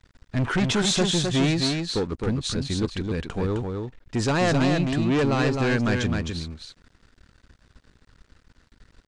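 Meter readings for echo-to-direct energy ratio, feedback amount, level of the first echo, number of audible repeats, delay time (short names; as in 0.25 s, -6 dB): -4.5 dB, no steady repeat, -4.5 dB, 1, 0.261 s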